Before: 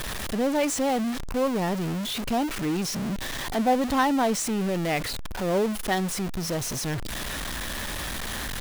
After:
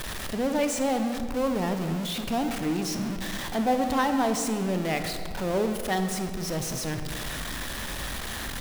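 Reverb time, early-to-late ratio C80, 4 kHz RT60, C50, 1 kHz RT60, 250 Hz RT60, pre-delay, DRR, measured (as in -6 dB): 2.1 s, 9.0 dB, 1.3 s, 7.5 dB, 2.0 s, 2.7 s, 22 ms, 6.5 dB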